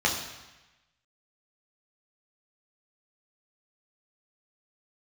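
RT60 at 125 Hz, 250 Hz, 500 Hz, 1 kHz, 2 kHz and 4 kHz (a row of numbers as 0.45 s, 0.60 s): 1.2 s, 1.0 s, 1.0 s, 1.1 s, 1.2 s, 1.1 s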